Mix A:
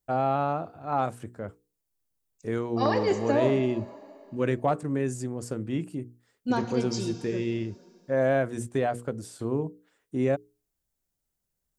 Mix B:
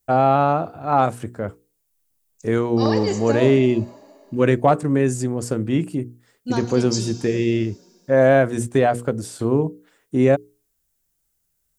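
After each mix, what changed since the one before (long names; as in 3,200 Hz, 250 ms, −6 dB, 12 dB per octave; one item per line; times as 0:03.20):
first voice +9.5 dB
second voice: add bass and treble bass 0 dB, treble +13 dB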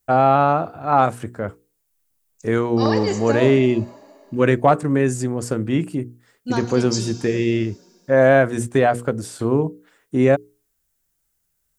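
master: add parametric band 1,500 Hz +3.5 dB 1.6 octaves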